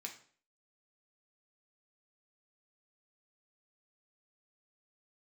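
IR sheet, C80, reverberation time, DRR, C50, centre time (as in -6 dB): 14.0 dB, 0.50 s, 1.5 dB, 10.0 dB, 15 ms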